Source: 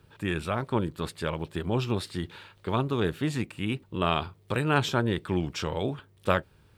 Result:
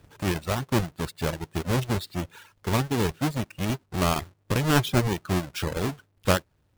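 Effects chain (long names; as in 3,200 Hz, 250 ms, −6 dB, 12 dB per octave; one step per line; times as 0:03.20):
each half-wave held at its own peak
reverb reduction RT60 0.84 s
level −1.5 dB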